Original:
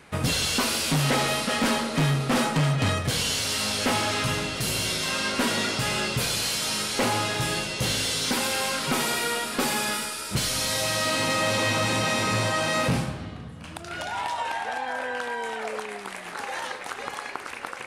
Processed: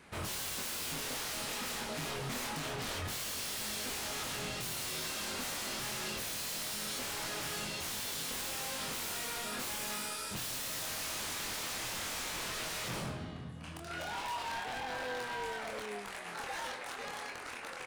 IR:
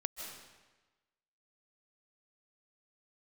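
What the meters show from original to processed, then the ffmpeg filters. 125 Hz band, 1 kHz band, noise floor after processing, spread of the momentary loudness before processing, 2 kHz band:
-18.5 dB, -12.5 dB, -45 dBFS, 11 LU, -12.5 dB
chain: -filter_complex "[0:a]aeval=exprs='0.0398*(abs(mod(val(0)/0.0398+3,4)-2)-1)':c=same,asplit=2[a][b];[b]adelay=24,volume=-4dB[c];[a][c]amix=inputs=2:normalize=0,volume=-7.5dB"

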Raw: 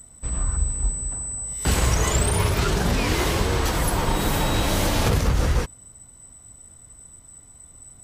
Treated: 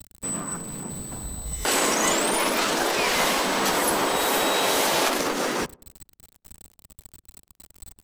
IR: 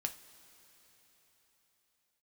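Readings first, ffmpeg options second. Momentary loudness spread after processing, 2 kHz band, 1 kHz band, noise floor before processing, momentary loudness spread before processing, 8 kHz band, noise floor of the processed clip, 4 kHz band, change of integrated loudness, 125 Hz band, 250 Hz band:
13 LU, +3.5 dB, +3.5 dB, -49 dBFS, 7 LU, +1.0 dB, -73 dBFS, +3.5 dB, 0.0 dB, -16.5 dB, -2.0 dB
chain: -filter_complex "[0:a]aeval=exprs='val(0)*gte(abs(val(0)),0.0106)':c=same,lowshelf=f=230:g=8,afftfilt=real='re*lt(hypot(re,im),0.316)':imag='im*lt(hypot(re,im),0.316)':win_size=1024:overlap=0.75,equalizer=f=110:w=2.3:g=-9.5,asplit=2[a][b];[b]adelay=100,lowpass=f=830:p=1,volume=-22dB,asplit=2[c][d];[d]adelay=100,lowpass=f=830:p=1,volume=0.37,asplit=2[e][f];[f]adelay=100,lowpass=f=830:p=1,volume=0.37[g];[a][c][e][g]amix=inputs=4:normalize=0,volume=3.5dB"

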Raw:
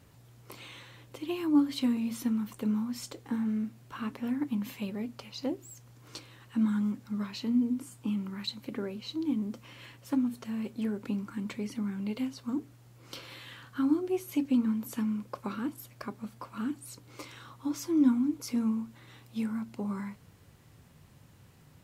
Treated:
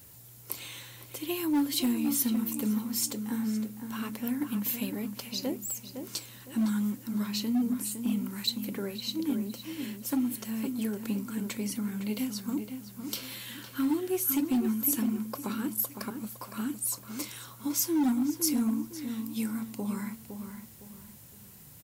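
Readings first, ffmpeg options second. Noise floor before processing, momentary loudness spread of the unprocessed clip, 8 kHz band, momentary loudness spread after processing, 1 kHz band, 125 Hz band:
-57 dBFS, 18 LU, +14.0 dB, 13 LU, +2.0 dB, +1.0 dB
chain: -filter_complex "[0:a]highshelf=f=6.3k:g=8.5,asplit=2[a][b];[b]adelay=510,lowpass=f=2.5k:p=1,volume=-7.5dB,asplit=2[c][d];[d]adelay=510,lowpass=f=2.5k:p=1,volume=0.35,asplit=2[e][f];[f]adelay=510,lowpass=f=2.5k:p=1,volume=0.35,asplit=2[g][h];[h]adelay=510,lowpass=f=2.5k:p=1,volume=0.35[i];[c][e][g][i]amix=inputs=4:normalize=0[j];[a][j]amix=inputs=2:normalize=0,volume=22.5dB,asoftclip=hard,volume=-22.5dB,aemphasis=mode=production:type=50kf,bandreject=f=1.2k:w=16"

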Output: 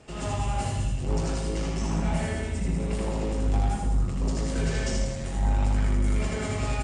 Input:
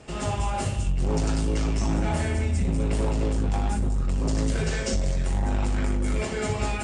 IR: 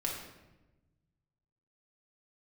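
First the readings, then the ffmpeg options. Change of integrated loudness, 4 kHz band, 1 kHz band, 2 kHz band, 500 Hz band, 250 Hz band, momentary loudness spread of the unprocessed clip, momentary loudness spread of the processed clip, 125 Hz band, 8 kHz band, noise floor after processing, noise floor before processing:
-1.5 dB, -2.0 dB, -1.5 dB, -2.5 dB, -2.5 dB, -2.0 dB, 2 LU, 4 LU, -1.5 dB, -2.0 dB, -32 dBFS, -30 dBFS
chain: -filter_complex "[0:a]aecho=1:1:80|160|240|320|400:0.708|0.283|0.113|0.0453|0.0181,asplit=2[a][b];[1:a]atrim=start_sample=2205,adelay=81[c];[b][c]afir=irnorm=-1:irlink=0,volume=-12.5dB[d];[a][d]amix=inputs=2:normalize=0,volume=-4.5dB"

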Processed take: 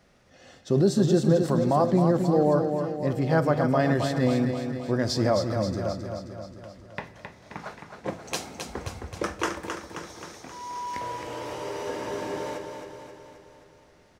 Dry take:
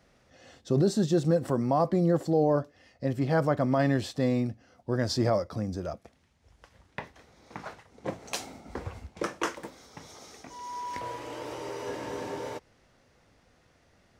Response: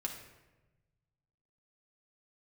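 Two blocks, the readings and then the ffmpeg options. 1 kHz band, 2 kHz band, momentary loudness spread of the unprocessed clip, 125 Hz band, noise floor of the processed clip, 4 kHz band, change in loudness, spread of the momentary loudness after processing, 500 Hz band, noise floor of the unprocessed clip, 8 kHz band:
+3.5 dB, +4.0 dB, 19 LU, +3.5 dB, -56 dBFS, +3.5 dB, +3.0 dB, 19 LU, +3.5 dB, -65 dBFS, +3.5 dB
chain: -filter_complex "[0:a]aecho=1:1:265|530|795|1060|1325|1590|1855|2120:0.473|0.274|0.159|0.0923|0.0535|0.0311|0.018|0.0104,asplit=2[a][b];[1:a]atrim=start_sample=2205[c];[b][c]afir=irnorm=-1:irlink=0,volume=-8.5dB[d];[a][d]amix=inputs=2:normalize=0"

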